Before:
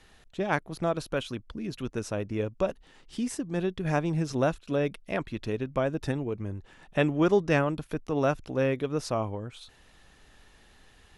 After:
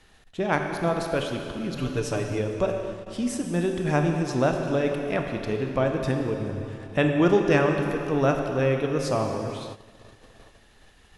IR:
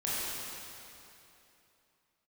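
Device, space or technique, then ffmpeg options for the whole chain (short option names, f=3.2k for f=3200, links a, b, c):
keyed gated reverb: -filter_complex "[0:a]asplit=3[a][b][c];[1:a]atrim=start_sample=2205[d];[b][d]afir=irnorm=-1:irlink=0[e];[c]apad=whole_len=493036[f];[e][f]sidechaingate=range=-15dB:threshold=-54dB:ratio=16:detection=peak,volume=-7.5dB[g];[a][g]amix=inputs=2:normalize=0,asettb=1/sr,asplit=3[h][i][j];[h]atrim=end=1.764[k];[i]atrim=start=1.76:end=2.39,asetpts=PTS-STARTPTS,afade=t=in:d=0.004:c=qsin,afade=t=out:st=0.626:d=0.004:c=qsin,aecho=1:1:6.9:0.83,atrim=end_sample=27783[l];[j]atrim=start=2.386[m];[k][l]acrossfade=d=0.004:c1=hsin:c2=qsin[n];[n][m]acrossfade=d=0.004:c1=qsin:c2=hsin"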